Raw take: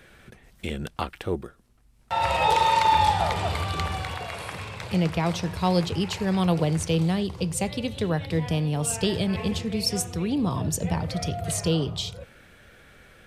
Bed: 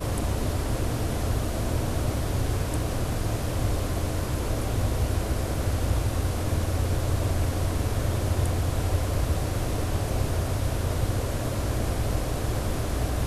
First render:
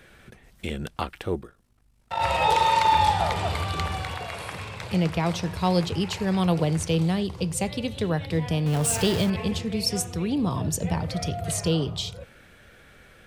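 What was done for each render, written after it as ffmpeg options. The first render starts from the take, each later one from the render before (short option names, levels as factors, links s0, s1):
-filter_complex "[0:a]asplit=3[s0][s1][s2];[s0]afade=t=out:st=1.39:d=0.02[s3];[s1]tremolo=f=51:d=0.71,afade=t=in:st=1.39:d=0.02,afade=t=out:st=2.19:d=0.02[s4];[s2]afade=t=in:st=2.19:d=0.02[s5];[s3][s4][s5]amix=inputs=3:normalize=0,asettb=1/sr,asplit=3[s6][s7][s8];[s6]atrim=end=8.664[s9];[s7]atrim=start=8.66:end=9.3,asetpts=PTS-STARTPTS,afade=t=in:d=0.004:c=qsin,afade=t=out:st=0.636:d=0.004:c=qsin,aeval=exprs='val(0)+0.5*0.0447*sgn(val(0))':c=same[s10];[s8]atrim=start=9.296[s11];[s9][s10]acrossfade=d=0.004:c1=hsin:c2=qsin[s12];[s12][s11]acrossfade=d=0.004:c1=qsin:c2=hsin"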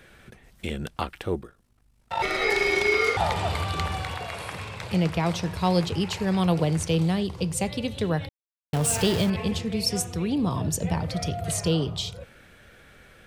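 -filter_complex "[0:a]asettb=1/sr,asplit=3[s0][s1][s2];[s0]atrim=end=2.224[s3];[s1]atrim=start=2.22:end=3.17,asetpts=PTS-STARTPTS,afade=t=in:d=0.004:c=qsin,afade=t=out:st=0.946:d=0.004:c=qsin,aeval=exprs='val(0)*sin(2*PI*1300*n/s)':c=same[s4];[s2]atrim=start=3.166[s5];[s3][s4]acrossfade=d=0.004:c1=hsin:c2=qsin[s6];[s6][s5]acrossfade=d=0.004:c1=qsin:c2=hsin,asplit=3[s7][s8][s9];[s7]atrim=end=8.29,asetpts=PTS-STARTPTS,afade=t=out:st=8.286:d=0.004:c=hsin[s10];[s8]atrim=start=8.29:end=8.73,asetpts=PTS-STARTPTS,volume=0[s11];[s9]atrim=start=8.73,asetpts=PTS-STARTPTS,afade=t=in:d=0.004:c=hsin[s12];[s10][s11][s12]concat=n=3:v=0:a=1"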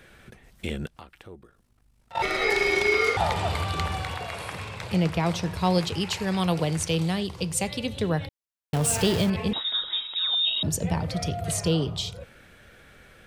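-filter_complex "[0:a]asettb=1/sr,asplit=3[s0][s1][s2];[s0]atrim=end=0.864[s3];[s1]atrim=start=0.86:end=2.15,asetpts=PTS-STARTPTS,afade=t=in:d=0.004:c=qsin,afade=t=out:st=1.286:d=0.004:c=qsin,acompressor=threshold=0.002:ratio=2:attack=3.2:release=140:knee=1:detection=peak[s4];[s2]atrim=start=2.146[s5];[s3][s4]acrossfade=d=0.004:c1=hsin:c2=qsin[s6];[s6][s5]acrossfade=d=0.004:c1=qsin:c2=hsin,asettb=1/sr,asplit=3[s7][s8][s9];[s7]atrim=end=5.784[s10];[s8]atrim=start=5.78:end=7.86,asetpts=PTS-STARTPTS,afade=t=in:d=0.004:c=qsin,afade=t=out:st=2.076:d=0.004:c=qsin,tiltshelf=f=970:g=-3[s11];[s9]atrim=start=7.856[s12];[s10][s11]acrossfade=d=0.004:c1=hsin:c2=qsin[s13];[s13][s12]acrossfade=d=0.004:c1=qsin:c2=hsin,asettb=1/sr,asplit=3[s14][s15][s16];[s14]atrim=end=9.534[s17];[s15]atrim=start=9.53:end=10.63,asetpts=PTS-STARTPTS,afade=t=in:d=0.004:c=qsin,afade=t=out:st=1.096:d=0.004:c=qsin,lowpass=f=3300:t=q:w=0.5098,lowpass=f=3300:t=q:w=0.6013,lowpass=f=3300:t=q:w=0.9,lowpass=f=3300:t=q:w=2.563,afreqshift=-3900[s18];[s16]atrim=start=10.626[s19];[s17][s18]acrossfade=d=0.004:c1=hsin:c2=qsin[s20];[s20][s19]acrossfade=d=0.004:c1=qsin:c2=hsin"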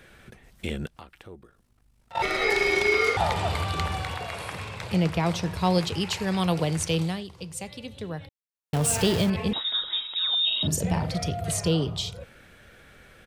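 -filter_complex "[0:a]asplit=3[s0][s1][s2];[s0]afade=t=out:st=10.51:d=0.02[s3];[s1]asplit=2[s4][s5];[s5]adelay=44,volume=0.501[s6];[s4][s6]amix=inputs=2:normalize=0,afade=t=in:st=10.51:d=0.02,afade=t=out:st=11.16:d=0.02[s7];[s2]afade=t=in:st=11.16:d=0.02[s8];[s3][s7][s8]amix=inputs=3:normalize=0,asplit=3[s9][s10][s11];[s9]atrim=end=7.24,asetpts=PTS-STARTPTS,afade=t=out:st=7:d=0.24:silence=0.354813[s12];[s10]atrim=start=7.24:end=8.52,asetpts=PTS-STARTPTS,volume=0.355[s13];[s11]atrim=start=8.52,asetpts=PTS-STARTPTS,afade=t=in:d=0.24:silence=0.354813[s14];[s12][s13][s14]concat=n=3:v=0:a=1"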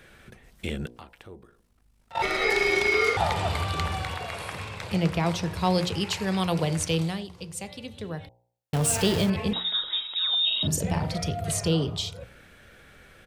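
-af "bandreject=f=59.6:t=h:w=4,bandreject=f=119.2:t=h:w=4,bandreject=f=178.8:t=h:w=4,bandreject=f=238.4:t=h:w=4,bandreject=f=298:t=h:w=4,bandreject=f=357.6:t=h:w=4,bandreject=f=417.2:t=h:w=4,bandreject=f=476.8:t=h:w=4,bandreject=f=536.4:t=h:w=4,bandreject=f=596:t=h:w=4,bandreject=f=655.6:t=h:w=4,bandreject=f=715.2:t=h:w=4,bandreject=f=774.8:t=h:w=4,bandreject=f=834.4:t=h:w=4,bandreject=f=894:t=h:w=4,bandreject=f=953.6:t=h:w=4,bandreject=f=1013.2:t=h:w=4"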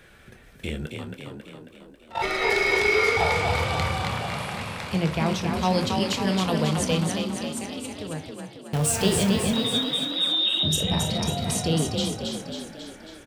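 -filter_complex "[0:a]asplit=2[s0][s1];[s1]adelay=26,volume=0.282[s2];[s0][s2]amix=inputs=2:normalize=0,asplit=9[s3][s4][s5][s6][s7][s8][s9][s10][s11];[s4]adelay=272,afreqshift=31,volume=0.596[s12];[s5]adelay=544,afreqshift=62,volume=0.347[s13];[s6]adelay=816,afreqshift=93,volume=0.2[s14];[s7]adelay=1088,afreqshift=124,volume=0.116[s15];[s8]adelay=1360,afreqshift=155,volume=0.0676[s16];[s9]adelay=1632,afreqshift=186,volume=0.0389[s17];[s10]adelay=1904,afreqshift=217,volume=0.0226[s18];[s11]adelay=2176,afreqshift=248,volume=0.0132[s19];[s3][s12][s13][s14][s15][s16][s17][s18][s19]amix=inputs=9:normalize=0"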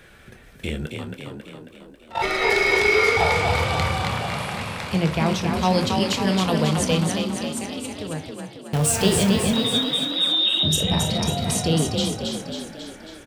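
-af "volume=1.41"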